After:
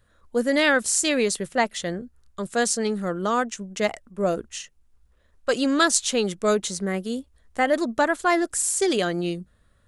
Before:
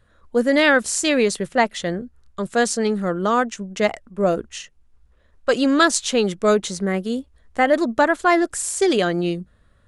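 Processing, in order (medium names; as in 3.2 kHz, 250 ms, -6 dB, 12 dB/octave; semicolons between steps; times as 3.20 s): treble shelf 5.9 kHz +9 dB; trim -4.5 dB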